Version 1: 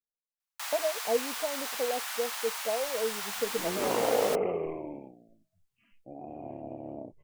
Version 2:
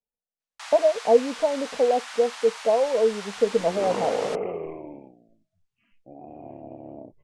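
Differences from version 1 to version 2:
speech +11.0 dB
master: add Bessel low-pass filter 6,300 Hz, order 8

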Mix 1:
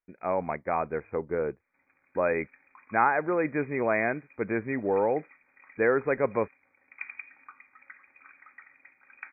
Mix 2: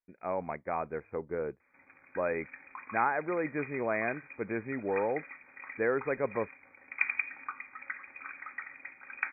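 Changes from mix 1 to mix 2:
speech −5.5 dB
background +9.5 dB

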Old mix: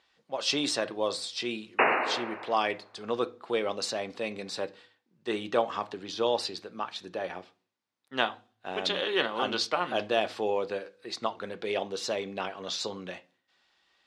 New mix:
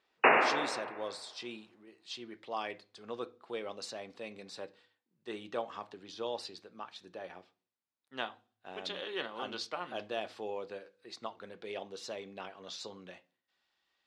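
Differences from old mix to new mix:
speech −10.5 dB
background: entry −1.55 s

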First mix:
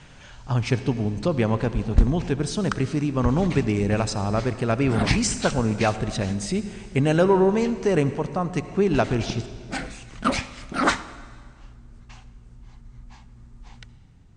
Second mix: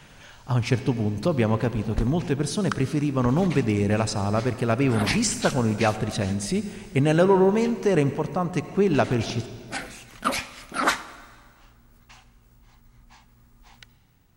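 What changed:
background: add low-shelf EQ 320 Hz −11 dB
master: remove Butterworth low-pass 9,000 Hz 72 dB per octave

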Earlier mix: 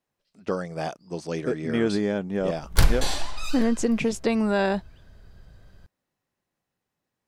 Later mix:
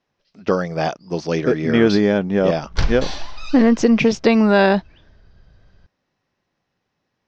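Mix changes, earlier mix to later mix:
speech +10.0 dB
master: add elliptic low-pass filter 5,800 Hz, stop band 80 dB

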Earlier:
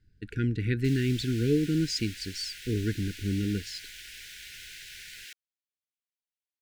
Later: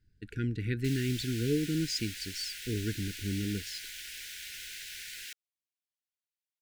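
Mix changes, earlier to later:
speech −4.5 dB
master: add high-shelf EQ 6,100 Hz +5.5 dB

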